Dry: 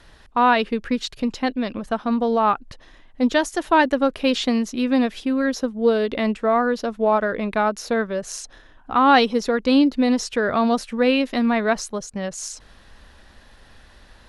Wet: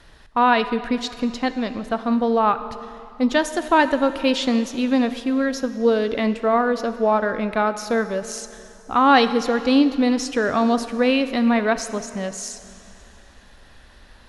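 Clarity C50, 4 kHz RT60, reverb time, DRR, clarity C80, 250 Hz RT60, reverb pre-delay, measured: 12.0 dB, 2.5 s, 2.7 s, 11.0 dB, 13.0 dB, 2.7 s, 5 ms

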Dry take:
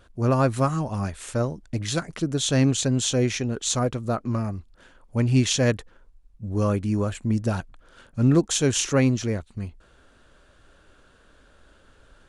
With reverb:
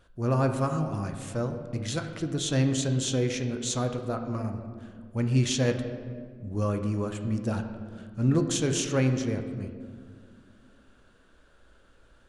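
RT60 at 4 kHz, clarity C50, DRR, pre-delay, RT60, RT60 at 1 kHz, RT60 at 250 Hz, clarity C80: 1.1 s, 8.0 dB, 5.0 dB, 6 ms, 2.0 s, 1.6 s, 2.9 s, 9.0 dB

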